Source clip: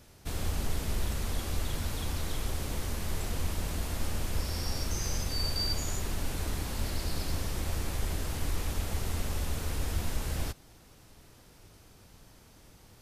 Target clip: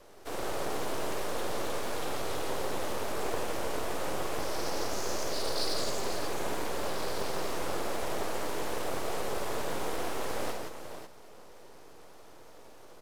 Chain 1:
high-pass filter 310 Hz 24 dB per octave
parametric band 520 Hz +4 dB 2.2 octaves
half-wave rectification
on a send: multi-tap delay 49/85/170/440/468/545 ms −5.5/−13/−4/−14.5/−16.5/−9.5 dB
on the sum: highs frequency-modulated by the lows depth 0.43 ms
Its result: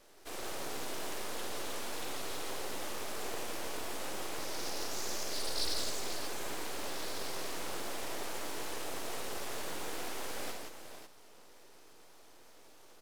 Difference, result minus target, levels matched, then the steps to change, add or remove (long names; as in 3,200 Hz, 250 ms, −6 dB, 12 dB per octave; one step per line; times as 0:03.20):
500 Hz band −4.0 dB
change: parametric band 520 Hz +13.5 dB 2.2 octaves